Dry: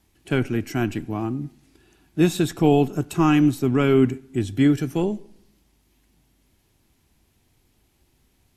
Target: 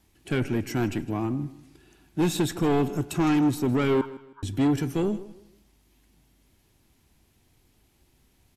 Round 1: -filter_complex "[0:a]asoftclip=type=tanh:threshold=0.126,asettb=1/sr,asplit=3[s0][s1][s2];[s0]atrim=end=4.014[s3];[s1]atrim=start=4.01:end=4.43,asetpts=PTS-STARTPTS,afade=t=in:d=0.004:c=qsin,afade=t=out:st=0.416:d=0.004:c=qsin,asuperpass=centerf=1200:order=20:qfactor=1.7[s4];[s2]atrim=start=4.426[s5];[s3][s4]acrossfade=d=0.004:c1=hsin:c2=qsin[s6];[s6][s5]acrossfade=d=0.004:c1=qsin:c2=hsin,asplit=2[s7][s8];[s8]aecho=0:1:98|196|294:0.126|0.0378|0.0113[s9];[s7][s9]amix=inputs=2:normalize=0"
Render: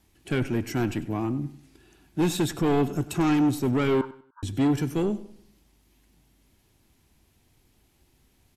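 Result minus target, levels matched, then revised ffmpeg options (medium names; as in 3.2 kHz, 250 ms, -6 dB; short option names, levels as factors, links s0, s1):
echo 60 ms early
-filter_complex "[0:a]asoftclip=type=tanh:threshold=0.126,asettb=1/sr,asplit=3[s0][s1][s2];[s0]atrim=end=4.014[s3];[s1]atrim=start=4.01:end=4.43,asetpts=PTS-STARTPTS,afade=t=in:d=0.004:c=qsin,afade=t=out:st=0.416:d=0.004:c=qsin,asuperpass=centerf=1200:order=20:qfactor=1.7[s4];[s2]atrim=start=4.426[s5];[s3][s4]acrossfade=d=0.004:c1=hsin:c2=qsin[s6];[s6][s5]acrossfade=d=0.004:c1=qsin:c2=hsin,asplit=2[s7][s8];[s8]aecho=0:1:158|316|474:0.126|0.0378|0.0113[s9];[s7][s9]amix=inputs=2:normalize=0"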